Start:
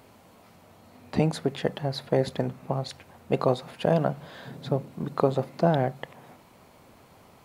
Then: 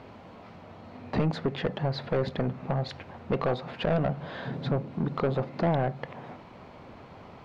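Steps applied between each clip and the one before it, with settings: in parallel at +3 dB: compression, threshold -31 dBFS, peak gain reduction 14.5 dB; on the sum: saturation -19.5 dBFS, distortion -7 dB; distance through air 220 m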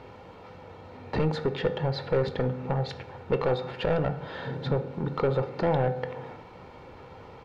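comb 2.2 ms, depth 47%; on a send at -10 dB: reverberation RT60 0.95 s, pre-delay 3 ms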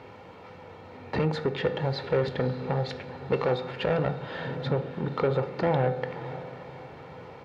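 high-pass 80 Hz; peaking EQ 2.1 kHz +3 dB 0.77 oct; echo that smears into a reverb 563 ms, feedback 48%, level -14 dB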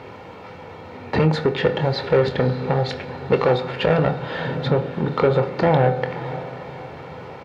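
doubling 25 ms -11 dB; trim +8 dB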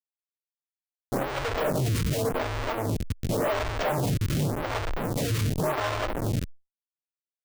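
frequency axis rescaled in octaves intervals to 128%; Schmitt trigger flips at -27.5 dBFS; lamp-driven phase shifter 0.89 Hz; trim +1.5 dB

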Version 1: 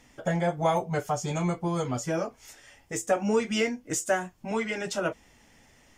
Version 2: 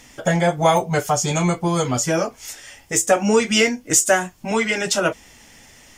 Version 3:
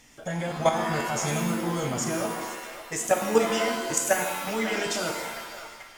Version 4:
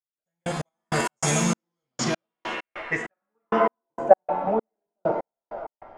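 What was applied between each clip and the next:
treble shelf 2.4 kHz +8 dB; trim +8 dB
feedback echo behind a band-pass 556 ms, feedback 39%, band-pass 1.3 kHz, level -11 dB; level held to a coarse grid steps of 13 dB; pitch-shifted reverb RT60 1.2 s, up +7 st, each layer -2 dB, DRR 4 dB; trim -4.5 dB
low-pass sweep 8.8 kHz -> 740 Hz, 1.22–4.11 s; trance gate "...x..x.xx" 98 bpm -60 dB; trim +4 dB

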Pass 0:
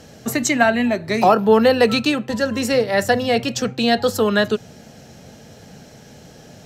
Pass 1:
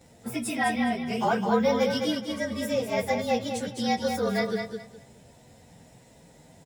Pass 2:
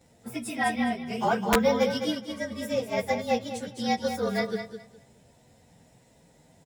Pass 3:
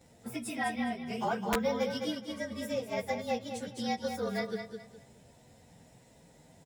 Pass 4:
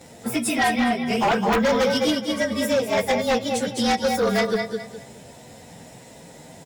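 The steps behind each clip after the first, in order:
frequency axis rescaled in octaves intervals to 109%; on a send: feedback delay 208 ms, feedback 22%, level -6 dB; on the sum: trim -8 dB
integer overflow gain 13 dB; upward expansion 1.5:1, over -33 dBFS; trim +1.5 dB
compression 1.5:1, threshold -41 dBFS, peak gain reduction 8.5 dB
bass shelf 110 Hz -11 dB; sine folder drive 10 dB, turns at -18 dBFS; trim +2.5 dB

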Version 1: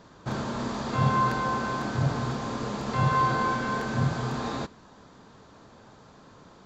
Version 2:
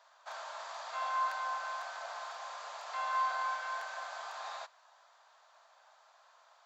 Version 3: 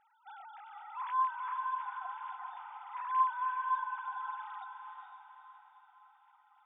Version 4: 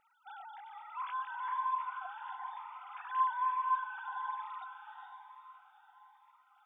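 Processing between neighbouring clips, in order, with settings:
elliptic high-pass 640 Hz, stop band 50 dB; trim -7 dB
formants replaced by sine waves; echo that smears into a reverb 452 ms, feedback 47%, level -5 dB
Shepard-style phaser rising 1.1 Hz; trim +3.5 dB

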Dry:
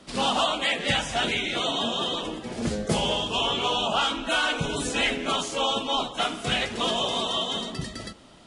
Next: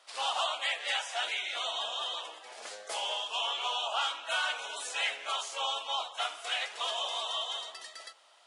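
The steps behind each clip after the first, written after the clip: high-pass 660 Hz 24 dB/octave; trim -6.5 dB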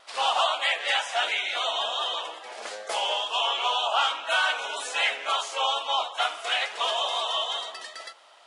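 wow and flutter 25 cents; treble shelf 3.9 kHz -7.5 dB; trim +9 dB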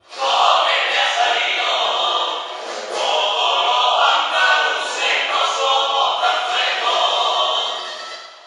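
reverberation RT60 1.0 s, pre-delay 3 ms, DRR -16.5 dB; trim -13 dB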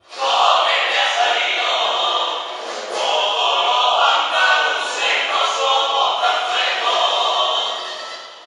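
frequency-shifting echo 328 ms, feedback 51%, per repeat -47 Hz, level -18 dB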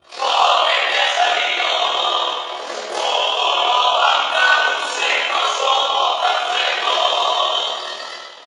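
AM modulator 40 Hz, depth 70%; doubling 14 ms -4 dB; trim +2.5 dB

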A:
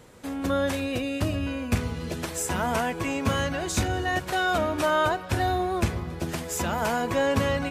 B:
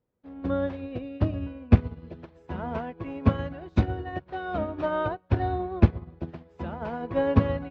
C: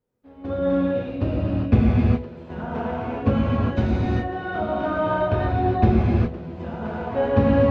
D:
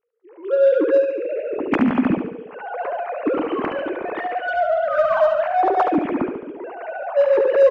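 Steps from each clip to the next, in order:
low-pass 4.1 kHz 24 dB/octave; tilt shelf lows +7.5 dB, about 1.3 kHz; upward expansion 2.5:1, over -37 dBFS; trim +2.5 dB
gated-style reverb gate 440 ms flat, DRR -7.5 dB; trim -2.5 dB
formants replaced by sine waves; in parallel at -6.5 dB: saturation -23 dBFS, distortion -6 dB; on the sum: feedback delay 71 ms, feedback 54%, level -7 dB; trim -1 dB

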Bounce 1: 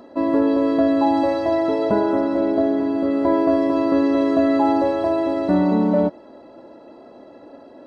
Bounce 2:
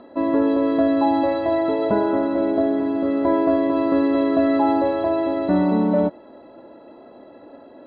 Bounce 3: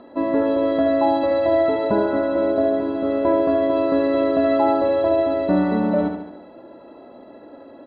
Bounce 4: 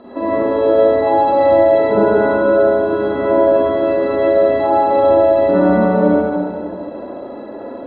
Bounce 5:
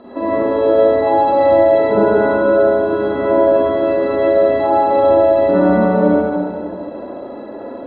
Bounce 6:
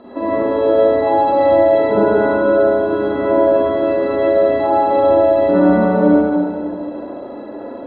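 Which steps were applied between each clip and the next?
elliptic low-pass 4 kHz, stop band 40 dB
feedback delay 74 ms, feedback 52%, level -6 dB
compression 4:1, threshold -23 dBFS, peak gain reduction 8.5 dB; peaking EQ 430 Hz +4 dB 0.34 oct; reverberation RT60 2.0 s, pre-delay 38 ms, DRR -9.5 dB; trim +1.5 dB
no audible change
feedback comb 300 Hz, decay 0.54 s, harmonics odd, mix 60%; trim +7 dB

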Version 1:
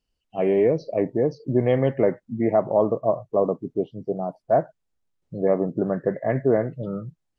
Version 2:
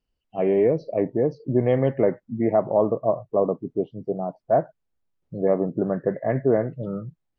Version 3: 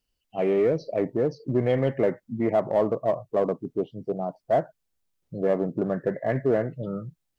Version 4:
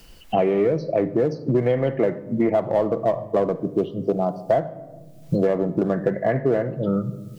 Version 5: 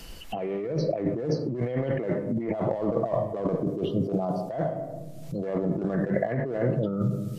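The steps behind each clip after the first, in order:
low-pass 2.4 kHz 6 dB/octave
treble shelf 2.6 kHz +12 dB; in parallel at -6 dB: hard clipper -19 dBFS, distortion -9 dB; on the sum: trim -5.5 dB
simulated room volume 2000 m³, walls furnished, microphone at 0.73 m; three bands compressed up and down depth 100%; trim +2.5 dB
compressor with a negative ratio -27 dBFS, ratio -1; MP3 56 kbps 32 kHz

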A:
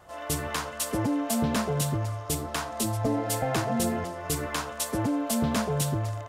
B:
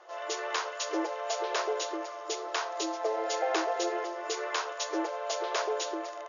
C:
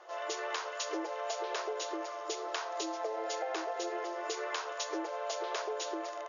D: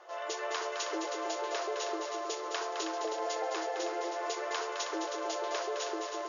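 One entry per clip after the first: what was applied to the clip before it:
FFT band-pass 320–7000 Hz
compression, threshold -33 dBFS, peak gain reduction 8.5 dB
multi-head delay 106 ms, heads second and third, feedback 49%, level -7.5 dB

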